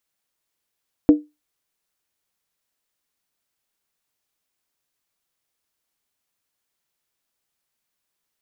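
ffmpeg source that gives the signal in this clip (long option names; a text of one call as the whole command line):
ffmpeg -f lavfi -i "aevalsrc='0.631*pow(10,-3*t/0.22)*sin(2*PI*299*t)+0.158*pow(10,-3*t/0.174)*sin(2*PI*476.6*t)+0.0398*pow(10,-3*t/0.151)*sin(2*PI*638.7*t)+0.01*pow(10,-3*t/0.145)*sin(2*PI*686.5*t)+0.00251*pow(10,-3*t/0.135)*sin(2*PI*793.2*t)':duration=0.63:sample_rate=44100" out.wav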